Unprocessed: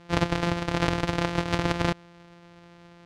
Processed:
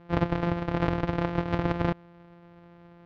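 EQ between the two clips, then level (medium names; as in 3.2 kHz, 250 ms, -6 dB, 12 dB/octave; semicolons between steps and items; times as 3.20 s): distance through air 110 m; treble shelf 2.2 kHz -10.5 dB; treble shelf 8 kHz -10.5 dB; 0.0 dB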